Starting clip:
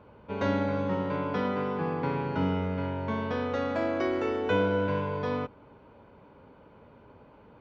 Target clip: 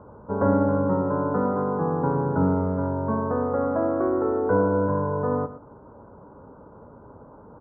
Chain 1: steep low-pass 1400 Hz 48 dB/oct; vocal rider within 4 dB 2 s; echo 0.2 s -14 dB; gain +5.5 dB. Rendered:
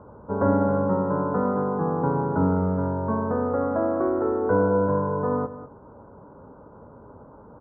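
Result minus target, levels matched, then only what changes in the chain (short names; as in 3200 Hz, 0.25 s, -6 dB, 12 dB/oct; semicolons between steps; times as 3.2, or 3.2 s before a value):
echo 84 ms late
change: echo 0.116 s -14 dB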